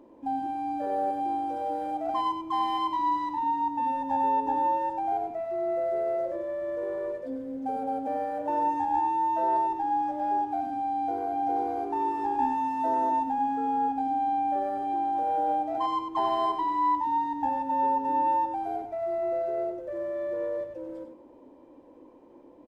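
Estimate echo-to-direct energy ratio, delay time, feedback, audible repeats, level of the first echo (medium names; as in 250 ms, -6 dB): -8.0 dB, 96 ms, 16%, 2, -8.0 dB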